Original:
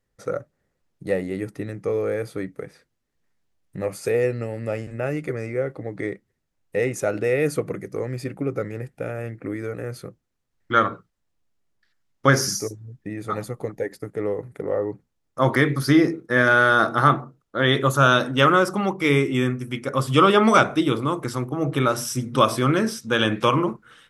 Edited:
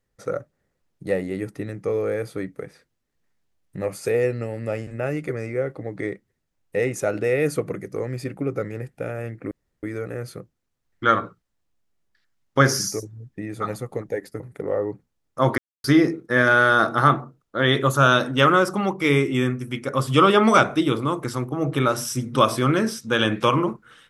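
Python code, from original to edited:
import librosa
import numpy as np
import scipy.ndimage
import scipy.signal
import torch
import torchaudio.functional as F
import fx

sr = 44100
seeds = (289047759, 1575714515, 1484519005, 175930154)

y = fx.edit(x, sr, fx.insert_room_tone(at_s=9.51, length_s=0.32),
    fx.cut(start_s=14.08, length_s=0.32),
    fx.silence(start_s=15.58, length_s=0.26), tone=tone)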